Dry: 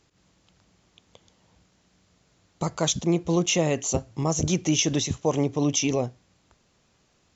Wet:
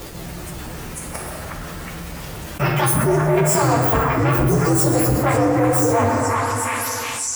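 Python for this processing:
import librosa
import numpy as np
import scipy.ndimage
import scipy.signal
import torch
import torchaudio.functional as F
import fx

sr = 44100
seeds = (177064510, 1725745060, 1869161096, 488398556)

y = fx.partial_stretch(x, sr, pct=129)
y = fx.leveller(y, sr, passes=2)
y = fx.formant_shift(y, sr, semitones=5)
y = fx.echo_stepped(y, sr, ms=363, hz=1400.0, octaves=0.7, feedback_pct=70, wet_db=-4.0)
y = fx.rev_plate(y, sr, seeds[0], rt60_s=1.6, hf_ratio=0.55, predelay_ms=0, drr_db=2.5)
y = fx.env_flatten(y, sr, amount_pct=70)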